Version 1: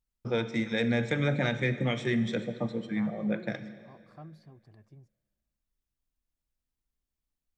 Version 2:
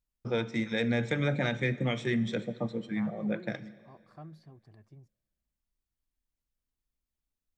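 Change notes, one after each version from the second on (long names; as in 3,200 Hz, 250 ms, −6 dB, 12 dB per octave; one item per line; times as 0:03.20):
first voice: send −6.0 dB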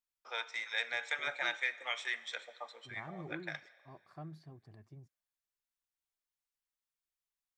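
first voice: add high-pass filter 820 Hz 24 dB per octave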